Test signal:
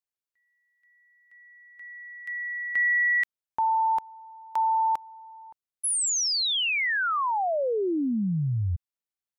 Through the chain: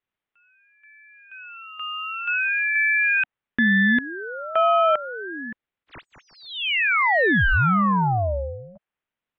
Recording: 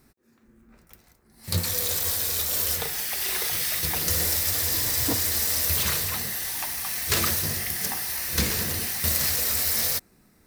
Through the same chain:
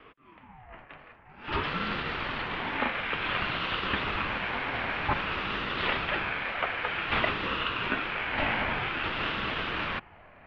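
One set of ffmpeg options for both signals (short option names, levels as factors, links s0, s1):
-filter_complex "[0:a]asplit=2[s0][s1];[s1]highpass=f=720:p=1,volume=28.2,asoftclip=type=tanh:threshold=0.668[s2];[s0][s2]amix=inputs=2:normalize=0,lowpass=f=1700:p=1,volume=0.501,highpass=f=150:t=q:w=0.5412,highpass=f=150:t=q:w=1.307,lowpass=f=2800:t=q:w=0.5176,lowpass=f=2800:t=q:w=0.7071,lowpass=f=2800:t=q:w=1.932,afreqshift=87,aeval=exprs='val(0)*sin(2*PI*540*n/s+540*0.45/0.53*sin(2*PI*0.53*n/s))':c=same,volume=0.668"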